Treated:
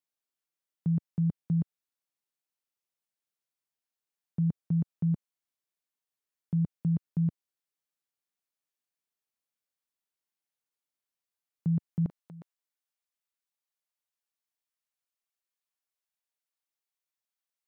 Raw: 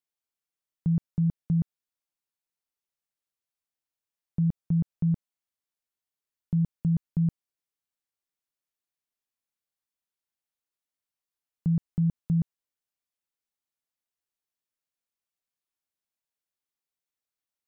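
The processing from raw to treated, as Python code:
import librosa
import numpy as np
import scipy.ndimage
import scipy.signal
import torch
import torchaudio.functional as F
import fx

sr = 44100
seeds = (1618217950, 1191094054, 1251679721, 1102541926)

y = fx.highpass(x, sr, hz=fx.steps((0.0, 120.0), (12.06, 570.0)), slope=12)
y = y * 10.0 ** (-1.5 / 20.0)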